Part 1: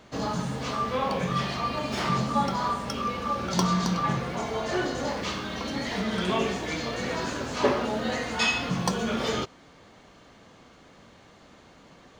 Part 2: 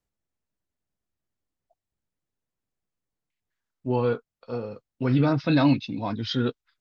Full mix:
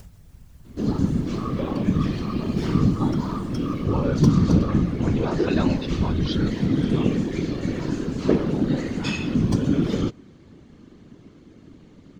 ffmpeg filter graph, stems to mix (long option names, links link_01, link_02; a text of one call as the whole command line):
ffmpeg -i stem1.wav -i stem2.wav -filter_complex "[0:a]lowshelf=frequency=440:width_type=q:width=1.5:gain=13.5,adelay=650,volume=0dB[link_01];[1:a]lowshelf=frequency=130:width_type=q:width=3:gain=11.5,acompressor=mode=upward:threshold=-12dB:ratio=2.5,volume=0dB[link_02];[link_01][link_02]amix=inputs=2:normalize=0,afftfilt=real='hypot(re,im)*cos(2*PI*random(0))':imag='hypot(re,im)*sin(2*PI*random(1))':win_size=512:overlap=0.75" out.wav